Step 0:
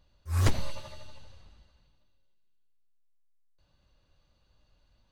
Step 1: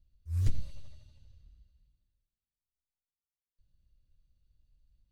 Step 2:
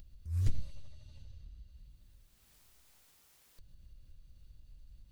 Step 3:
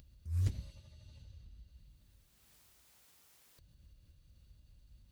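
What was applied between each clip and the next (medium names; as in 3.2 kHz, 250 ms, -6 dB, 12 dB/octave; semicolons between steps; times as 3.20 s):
amplifier tone stack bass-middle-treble 10-0-1; trim +6 dB
upward compressor, threshold -37 dBFS; trim -2 dB
high-pass 53 Hz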